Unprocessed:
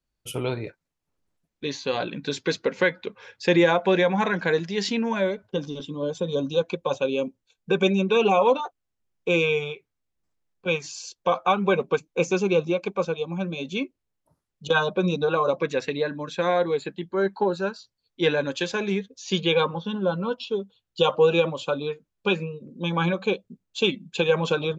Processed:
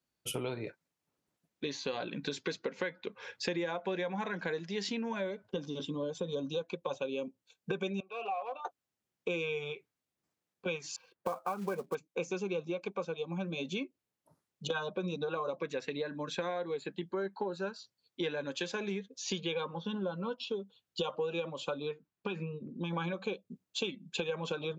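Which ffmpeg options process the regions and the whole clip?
ffmpeg -i in.wav -filter_complex "[0:a]asettb=1/sr,asplit=3[link_01][link_02][link_03];[link_01]atrim=end=8.004[link_04];[link_02]atrim=start=8:end=8.65,asetpts=PTS-STARTPTS,afade=type=in:duration=0.004:curve=qsin,afade=type=out:start_time=0.646:duration=0.004:curve=qsin,volume=15dB,asoftclip=hard,volume=-15dB,asplit=3[link_05][link_06][link_07];[link_05]bandpass=frequency=730:width_type=q:width=8,volume=0dB[link_08];[link_06]bandpass=frequency=1090:width_type=q:width=8,volume=-6dB[link_09];[link_07]bandpass=frequency=2440:width_type=q:width=8,volume=-9dB[link_10];[link_08][link_09][link_10]amix=inputs=3:normalize=0,lowshelf=frequency=400:gain=-7.5[link_11];[link_03]atrim=start=8.646[link_12];[link_04][link_11]acrossfade=duration=0.004:curve1=hsin:curve2=qsin[link_13];[link_13][link_12]acrossfade=duration=0.004:curve1=qsin:curve2=hsin,asettb=1/sr,asplit=3[link_14][link_15][link_16];[link_14]atrim=end=10.964[link_17];[link_15]atrim=start=10.96:end=11.95,asetpts=PTS-STARTPTS,afade=type=in:duration=0.004:curve=qsin,afade=type=out:start_time=0.986:duration=0.004:curve=qsin,lowpass=frequency=2000:width=0.5412,lowpass=frequency=2000:width=1.3066,acrusher=bits=5:mode=log:mix=0:aa=0.000001[link_18];[link_16]atrim=start=11.946[link_19];[link_17][link_18]acrossfade=duration=0.004:curve1=hsin:curve2=qsin[link_20];[link_20][link_19]acrossfade=duration=0.004:curve1=qsin:curve2=hsin,asettb=1/sr,asplit=3[link_21][link_22][link_23];[link_21]atrim=end=21.914[link_24];[link_22]atrim=start=21.91:end=22.93,asetpts=PTS-STARTPTS,afade=type=in:duration=0.004:curve=qsin,afade=type=out:start_time=1.016:duration=0.004:curve=qsin,lowpass=frequency=2500:poles=1,equalizer=frequency=540:width_type=o:width=0.4:gain=-8.5,acompressor=threshold=-25dB:ratio=4:attack=3.2:release=140:knee=1:detection=peak[link_25];[link_23]atrim=start=22.926[link_26];[link_24][link_25]acrossfade=duration=0.004:curve1=hsin:curve2=qsin[link_27];[link_27][link_26]acrossfade=duration=0.004:curve1=qsin:curve2=hsin,highpass=130,acompressor=threshold=-34dB:ratio=5" out.wav

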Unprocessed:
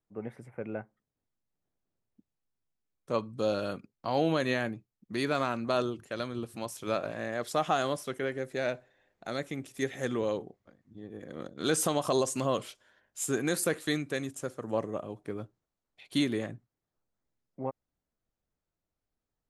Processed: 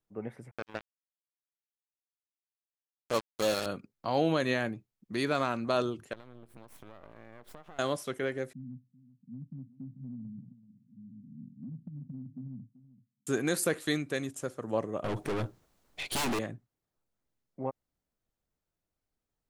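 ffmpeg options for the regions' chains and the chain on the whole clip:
ffmpeg -i in.wav -filter_complex "[0:a]asettb=1/sr,asplit=3[link_01][link_02][link_03];[link_01]atrim=end=0.514[link_04];[link_02]atrim=start=0.51:end=3.66,asetpts=PTS-STARTPTS,afade=type=in:duration=0.004:curve=qsin,afade=type=out:start_time=3.146:duration=0.004:curve=qsin,bass=frequency=250:gain=-5,treble=frequency=4000:gain=12,acrusher=bits=4:mix=0:aa=0.5[link_05];[link_03]atrim=start=3.656[link_06];[link_04][link_05]acrossfade=duration=0.004:curve1=hsin:curve2=qsin[link_07];[link_07][link_06]acrossfade=duration=0.004:curve1=qsin:curve2=hsin,asettb=1/sr,asplit=3[link_08][link_09][link_10];[link_08]atrim=end=6.134[link_11];[link_09]atrim=start=6.13:end=7.79,asetpts=PTS-STARTPTS,afade=type=in:duration=0.004:curve=qsin,afade=type=out:start_time=1.656:duration=0.004:curve=qsin,aeval=exprs='max(val(0),0)':channel_layout=same,equalizer=frequency=6200:width=0.57:gain=-10.5,acompressor=threshold=-45dB:ratio=8:attack=3.2:release=140:knee=1:detection=peak[link_12];[link_10]atrim=start=7.786[link_13];[link_11][link_12]acrossfade=duration=0.004:curve1=hsin:curve2=qsin[link_14];[link_14][link_13]acrossfade=duration=0.004:curve1=qsin:curve2=hsin,asettb=1/sr,asplit=3[link_15][link_16][link_17];[link_15]atrim=end=8.534[link_18];[link_16]atrim=start=8.53:end=13.27,asetpts=PTS-STARTPTS,afade=type=in:duration=0.004:curve=qsin,afade=type=out:start_time=4.736:duration=0.004:curve=qsin,asuperpass=centerf=170:order=20:qfactor=1.1,acompressor=threshold=-38dB:ratio=10:attack=3.2:release=140:knee=1:detection=peak,aecho=1:1:383:0.15,atrim=end_sample=209034[link_19];[link_17]atrim=start=13.266[link_20];[link_18][link_19]acrossfade=duration=0.004:curve1=hsin:curve2=qsin[link_21];[link_21][link_20]acrossfade=duration=0.004:curve1=qsin:curve2=hsin,asettb=1/sr,asplit=3[link_22][link_23][link_24];[link_22]atrim=end=15.044[link_25];[link_23]atrim=start=15.04:end=16.39,asetpts=PTS-STARTPTS,afade=type=in:duration=0.004:curve=qsin,afade=type=out:start_time=1.346:duration=0.004:curve=qsin,aeval=exprs='0.178*sin(PI/2*5.62*val(0)/0.178)':channel_layout=same,aeval=exprs='(tanh(31.6*val(0)+0.4)-tanh(0.4))/31.6':channel_layout=same[link_26];[link_24]atrim=start=16.386[link_27];[link_25][link_26]acrossfade=duration=0.004:curve1=hsin:curve2=qsin[link_28];[link_28][link_27]acrossfade=duration=0.004:curve1=qsin:curve2=hsin" out.wav

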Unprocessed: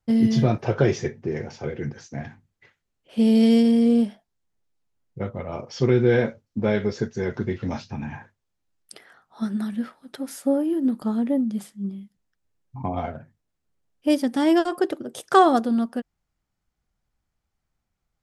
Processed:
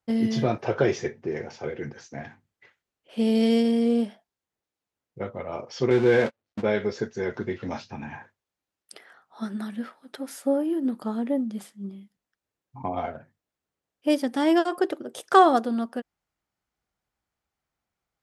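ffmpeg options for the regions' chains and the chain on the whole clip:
ffmpeg -i in.wav -filter_complex "[0:a]asettb=1/sr,asplit=3[link_01][link_02][link_03];[link_01]atrim=end=5.904[link_04];[link_02]atrim=start=5.9:end=6.63,asetpts=PTS-STARTPTS,afade=type=in:duration=0.004:curve=qsin,afade=type=out:start_time=0.726:duration=0.004:curve=qsin,aeval=exprs='val(0)+0.5*0.0447*sgn(val(0))':channel_layout=same,lowpass=5800,agate=range=-48dB:threshold=-24dB:ratio=16:release=100:detection=peak[link_05];[link_03]atrim=start=6.626[link_06];[link_04][link_05]acrossfade=duration=0.004:curve1=hsin:curve2=qsin[link_07];[link_07][link_06]acrossfade=duration=0.004:curve1=qsin:curve2=hsin,highpass=47,bass=frequency=250:gain=-9,treble=frequency=4000:gain=-3" out.wav

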